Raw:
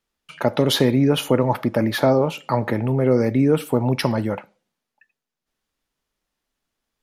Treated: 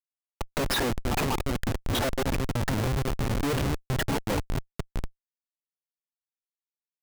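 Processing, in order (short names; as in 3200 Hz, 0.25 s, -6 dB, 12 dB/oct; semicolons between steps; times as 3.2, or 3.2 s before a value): random spectral dropouts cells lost 64%; multi-head echo 0.218 s, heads first and third, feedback 66%, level -17 dB; Schmitt trigger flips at -30 dBFS; gain +1.5 dB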